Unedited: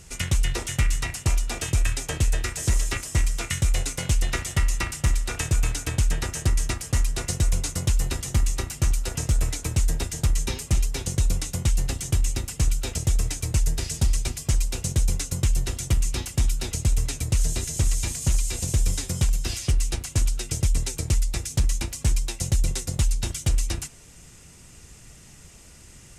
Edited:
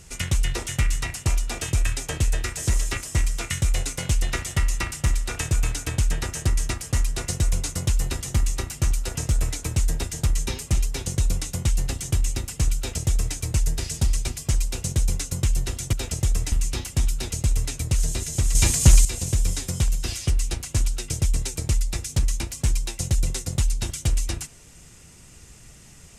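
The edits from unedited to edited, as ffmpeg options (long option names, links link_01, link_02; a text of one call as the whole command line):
ffmpeg -i in.wav -filter_complex "[0:a]asplit=5[link_01][link_02][link_03][link_04][link_05];[link_01]atrim=end=15.932[link_06];[link_02]atrim=start=12.768:end=13.362[link_07];[link_03]atrim=start=15.928:end=17.962[link_08];[link_04]atrim=start=17.958:end=18.462,asetpts=PTS-STARTPTS,volume=9dB[link_09];[link_05]atrim=start=18.458[link_10];[link_06][link_07]acrossfade=duration=0.004:curve1=hsin:curve2=hsin[link_11];[link_11][link_08]acrossfade=duration=0.004:curve1=hsin:curve2=hsin[link_12];[link_12][link_09]acrossfade=duration=0.004:curve1=hsin:curve2=hsin[link_13];[link_13][link_10]acrossfade=duration=0.004:curve1=hsin:curve2=hsin" out.wav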